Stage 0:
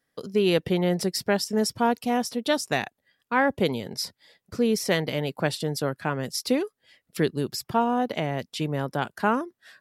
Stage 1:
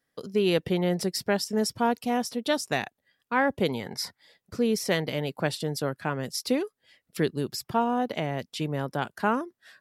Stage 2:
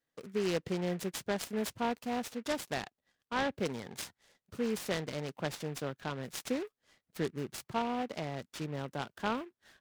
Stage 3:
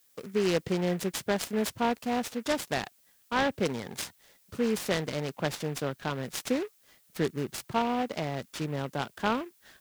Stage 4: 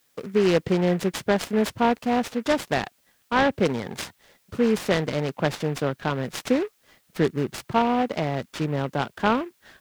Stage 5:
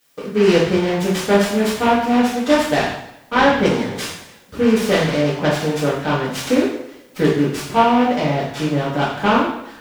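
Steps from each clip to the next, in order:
time-frequency box 3.74–4.21 s, 690–2300 Hz +8 dB; trim -2 dB
delay time shaken by noise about 1.6 kHz, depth 0.056 ms; trim -8.5 dB
added noise blue -70 dBFS; trim +5.5 dB
treble shelf 4.7 kHz -10 dB; trim +7 dB
two-slope reverb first 0.71 s, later 2.4 s, from -28 dB, DRR -8 dB; trim -1 dB

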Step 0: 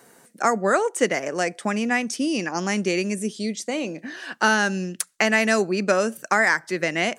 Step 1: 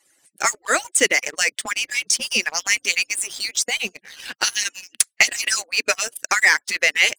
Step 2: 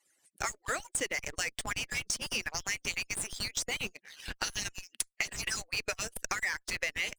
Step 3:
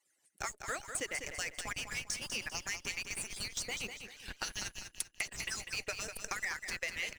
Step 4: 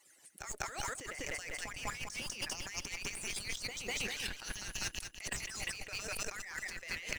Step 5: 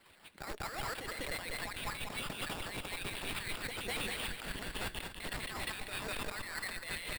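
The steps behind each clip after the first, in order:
harmonic-percussive separation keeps percussive; high-order bell 4.7 kHz +13 dB 2.9 oct; waveshaping leveller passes 2; trim -8 dB
harmonic-percussive split harmonic -5 dB; in parallel at -7.5 dB: Schmitt trigger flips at -21.5 dBFS; on the sum: compression 6:1, threshold -21 dBFS, peak gain reduction 11.5 dB; trim -9 dB
feedback delay 198 ms, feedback 35%, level -8 dB; trim -5 dB
compressor with a negative ratio -48 dBFS, ratio -1; trim +6 dB
sample-rate reducer 6.2 kHz, jitter 0%; hard clipper -35 dBFS, distortion -11 dB; delay 243 ms -13 dB; trim +2 dB

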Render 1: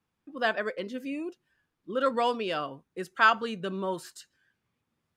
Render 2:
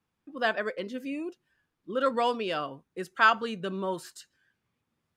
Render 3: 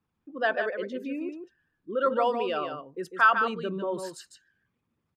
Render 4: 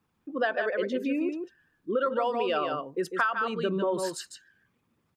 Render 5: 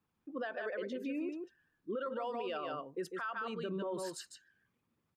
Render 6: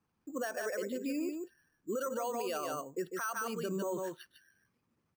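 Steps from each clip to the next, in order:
no audible change
resonances exaggerated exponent 1.5; delay 149 ms -7 dB; trim +1 dB
bass shelf 130 Hz -5.5 dB; compression 16:1, threshold -30 dBFS, peak gain reduction 16 dB; trim +7 dB
peak limiter -22.5 dBFS, peak gain reduction 10.5 dB; trim -8 dB
careless resampling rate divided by 6×, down filtered, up hold; trim +2.5 dB

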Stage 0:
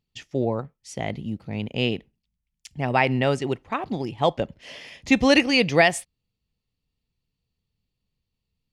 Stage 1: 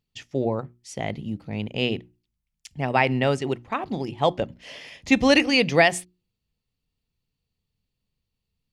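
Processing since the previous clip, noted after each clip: hum notches 60/120/180/240/300/360 Hz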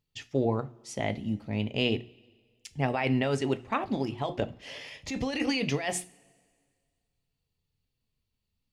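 compressor with a negative ratio -23 dBFS, ratio -1; flange 0.4 Hz, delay 2.1 ms, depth 1.4 ms, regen -68%; two-slope reverb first 0.29 s, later 1.9 s, from -21 dB, DRR 11.5 dB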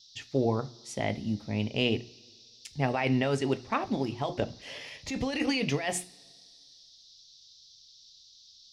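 band noise 3.5–5.8 kHz -56 dBFS

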